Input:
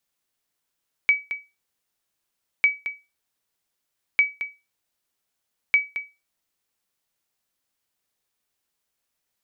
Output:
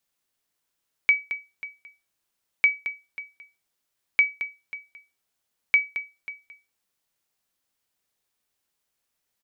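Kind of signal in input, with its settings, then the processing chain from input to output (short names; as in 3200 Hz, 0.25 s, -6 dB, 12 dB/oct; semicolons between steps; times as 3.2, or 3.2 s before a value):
sonar ping 2280 Hz, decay 0.25 s, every 1.55 s, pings 4, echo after 0.22 s, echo -11.5 dB -9.5 dBFS
echo 0.54 s -17.5 dB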